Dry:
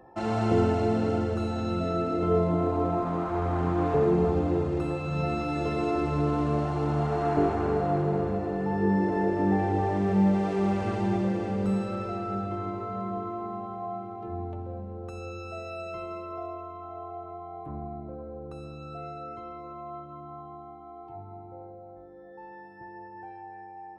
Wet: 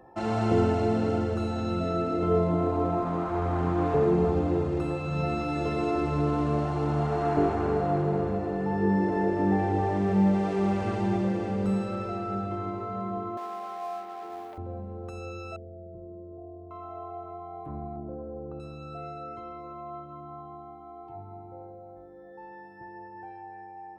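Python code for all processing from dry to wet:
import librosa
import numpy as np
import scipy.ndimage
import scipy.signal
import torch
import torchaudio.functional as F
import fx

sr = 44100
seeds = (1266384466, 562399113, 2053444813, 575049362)

y = fx.chain(x, sr, fx.law_mismatch(coded='mu'),
    fx.highpass(hz=550.0, slope=12), at=(13.37, 14.58))
y = fx.chain(y, sr, fx.gaussian_blur(sigma=17.0),
    fx.env_flatten(amount_pct=50), at=(15.56, 16.71))
y = fx.chain(y, sr, fx.lowpass(hz=1200.0, slope=12),
    fx.peak_eq(hz=320.0, db=3.0, octaves=1.5), at=(17.96, 18.6))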